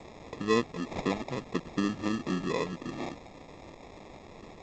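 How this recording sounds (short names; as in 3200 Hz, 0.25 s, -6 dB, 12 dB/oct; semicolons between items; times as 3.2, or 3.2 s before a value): a quantiser's noise floor 8-bit, dither triangular; phasing stages 2, 4 Hz, lowest notch 510–3200 Hz; aliases and images of a low sample rate 1500 Hz, jitter 0%; G.722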